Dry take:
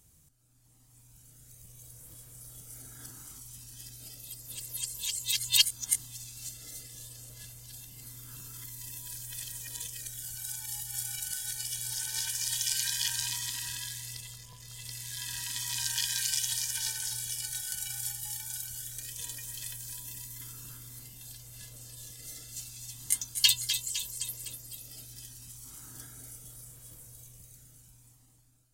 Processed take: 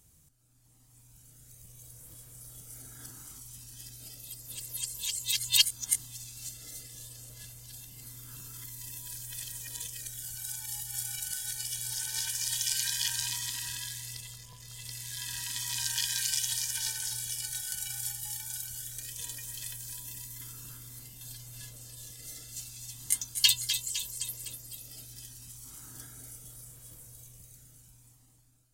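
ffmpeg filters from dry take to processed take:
ffmpeg -i in.wav -filter_complex "[0:a]asettb=1/sr,asplit=3[link_01][link_02][link_03];[link_01]atrim=end=21.204[link_04];[link_02]atrim=start=21.2:end=21.71,asetpts=PTS-STARTPTS,afade=type=in:duration=0.004:curve=qsin,afade=type=out:start_time=0.506:duration=0.004:curve=qsin,aecho=1:1:7.2:0.64,atrim=end_sample=22491[link_05];[link_03]atrim=start=21.706[link_06];[link_04][link_05]acrossfade=duration=0.004:curve1=hsin:curve2=qsin[link_07];[link_07][link_06]acrossfade=duration=0.004:curve1=qsin:curve2=hsin" out.wav

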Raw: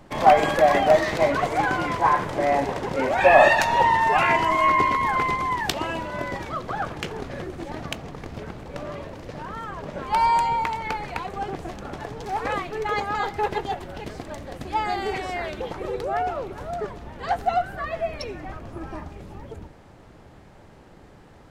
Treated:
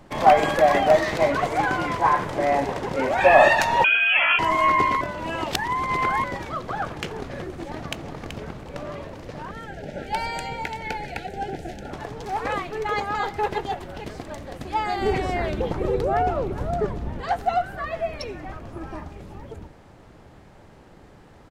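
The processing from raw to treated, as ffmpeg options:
ffmpeg -i in.wav -filter_complex "[0:a]asettb=1/sr,asplit=3[link_01][link_02][link_03];[link_01]atrim=end=3.844[link_04];[link_02]atrim=start=3.84:end=4.39,asetpts=PTS-STARTPTS,afade=type=in:duration=0.004:curve=qsin,afade=type=out:start_time=0.546:duration=0.004:curve=qsin,lowpass=frequency=2900:width_type=q:width=0.5098,lowpass=frequency=2900:width_type=q:width=0.6013,lowpass=frequency=2900:width_type=q:width=0.9,lowpass=frequency=2900:width_type=q:width=2.563,afreqshift=-3400[link_05];[link_03]atrim=start=4.386[link_06];[link_04][link_05]acrossfade=duration=0.004:curve1=hsin:curve2=qsin[link_07];[link_07][link_06]acrossfade=duration=0.004:curve1=qsin:curve2=hsin,asplit=2[link_08][link_09];[link_09]afade=type=in:start_time=7.59:duration=0.01,afade=type=out:start_time=8.19:duration=0.01,aecho=0:1:380|760:0.398107|0.0597161[link_10];[link_08][link_10]amix=inputs=2:normalize=0,asettb=1/sr,asplit=3[link_11][link_12][link_13];[link_11]atrim=end=9.514[link_14];[link_12]atrim=start=9.51:end=11.91,asetpts=PTS-STARTPTS,afade=type=in:duration=0.004:curve=qsin,afade=type=out:start_time=2.396:duration=0.004:curve=qsin,asuperstop=centerf=1100:order=12:qfactor=2.2[link_15];[link_13]atrim=start=11.906[link_16];[link_14][link_15]acrossfade=duration=0.004:curve1=hsin:curve2=qsin[link_17];[link_17][link_16]acrossfade=duration=0.004:curve1=qsin:curve2=hsin,asettb=1/sr,asplit=3[link_18][link_19][link_20];[link_18]atrim=end=15.014[link_21];[link_19]atrim=start=15.01:end=17.21,asetpts=PTS-STARTPTS,afade=type=in:duration=0.004:curve=qsin,afade=type=out:start_time=2.196:duration=0.004:curve=qsin,lowshelf=frequency=440:gain=11[link_22];[link_20]atrim=start=17.206[link_23];[link_21][link_22]acrossfade=duration=0.004:curve1=hsin:curve2=qsin[link_24];[link_24][link_23]acrossfade=duration=0.004:curve1=qsin:curve2=hsin,asplit=3[link_25][link_26][link_27];[link_25]atrim=end=5.012[link_28];[link_26]atrim=start=5.008:end=6.242,asetpts=PTS-STARTPTS,areverse[link_29];[link_27]atrim=start=6.238[link_30];[link_28][link_29]acrossfade=duration=0.004:curve1=hsin:curve2=hsin[link_31];[link_31][link_30]acrossfade=duration=0.004:curve1=hsin:curve2=hsin" out.wav

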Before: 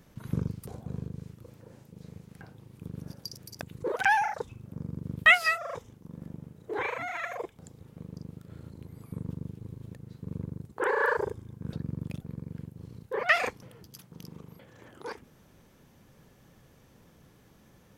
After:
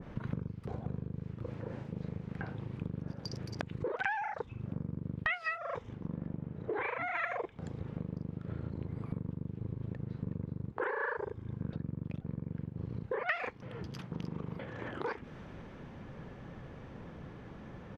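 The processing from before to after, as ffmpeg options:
ffmpeg -i in.wav -filter_complex "[0:a]asettb=1/sr,asplit=3[link_01][link_02][link_03];[link_01]atrim=end=5.954[link_04];[link_02]atrim=start=5.95:end=7.15,asetpts=PTS-STARTPTS,afade=type=in:duration=0.004:curve=qsin,afade=type=out:start_time=1.196:duration=0.004:curve=qsin,highshelf=frequency=6200:gain=-10[link_05];[link_03]atrim=start=7.146[link_06];[link_04][link_05]acrossfade=duration=0.004:curve1=hsin:curve2=qsin[link_07];[link_07][link_06]acrossfade=duration=0.004:curve1=qsin:curve2=hsin,asplit=2[link_08][link_09];[link_09]afade=type=in:start_time=9.89:duration=0.01,afade=type=out:start_time=10.32:duration=0.01,aecho=0:1:370|740:0.562341|0.0562341[link_10];[link_08][link_10]amix=inputs=2:normalize=0,lowpass=2200,acompressor=threshold=-45dB:ratio=10,adynamicequalizer=threshold=0.001:dfrequency=1500:dqfactor=0.7:tfrequency=1500:tqfactor=0.7:attack=5:release=100:ratio=0.375:range=2.5:mode=boostabove:tftype=highshelf,volume=11dB" out.wav

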